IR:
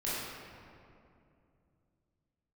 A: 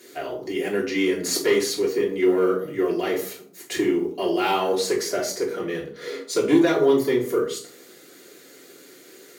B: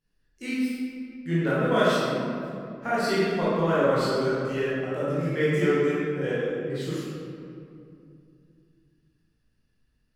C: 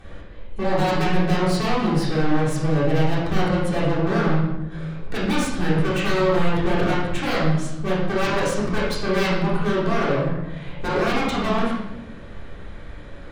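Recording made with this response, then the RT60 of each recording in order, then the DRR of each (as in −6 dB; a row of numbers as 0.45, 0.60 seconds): B; 0.50, 2.6, 0.85 seconds; −5.0, −10.0, −8.0 decibels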